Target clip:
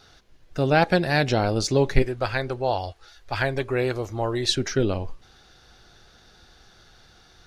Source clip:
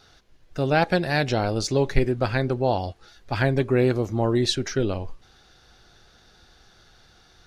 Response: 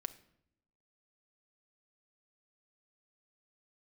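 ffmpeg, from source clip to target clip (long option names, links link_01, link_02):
-filter_complex "[0:a]asettb=1/sr,asplit=3[link_01][link_02][link_03];[link_01]atrim=end=2.024[link_04];[link_02]atrim=start=2.02:end=4.49,asetpts=PTS-STARTPTS,afade=type=in:duration=0.004:curve=qsin,afade=type=out:start_time=2.466:duration=0.004:curve=qsin,equalizer=frequency=200:width=0.8:gain=-12.5[link_05];[link_03]atrim=start=4.486[link_06];[link_04][link_05]acrossfade=duration=0.004:curve1=hsin:curve2=qsin[link_07];[link_07][link_06]acrossfade=duration=0.004:curve1=qsin:curve2=hsin,volume=1.5dB"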